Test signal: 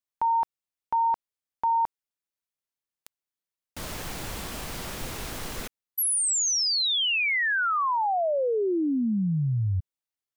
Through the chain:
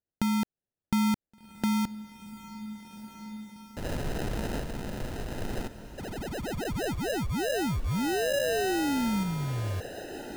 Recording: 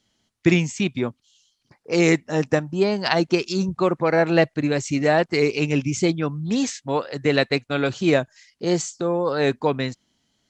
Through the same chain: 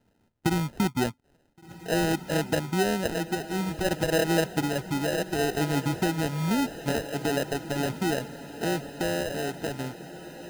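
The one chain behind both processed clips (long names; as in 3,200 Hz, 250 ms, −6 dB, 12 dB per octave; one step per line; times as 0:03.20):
low-pass filter 1,200 Hz 6 dB per octave
in parallel at +1.5 dB: brickwall limiter −13.5 dBFS
on the sum: downward compressor 2.5 to 1, threshold −26 dBFS
decimation without filtering 39×
sample-and-hold tremolo 1.3 Hz
on a send: feedback delay with all-pass diffusion 1,517 ms, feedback 47%, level −13 dB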